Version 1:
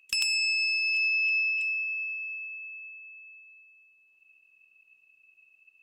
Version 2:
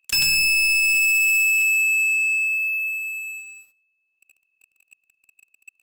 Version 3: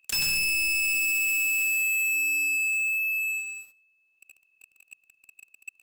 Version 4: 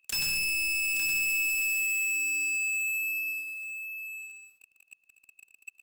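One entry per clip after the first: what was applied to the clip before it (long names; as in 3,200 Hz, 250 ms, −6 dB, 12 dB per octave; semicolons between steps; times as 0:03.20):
leveller curve on the samples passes 5
hard clipping −29 dBFS, distortion −10 dB; level +4 dB
single-tap delay 869 ms −8 dB; level −3.5 dB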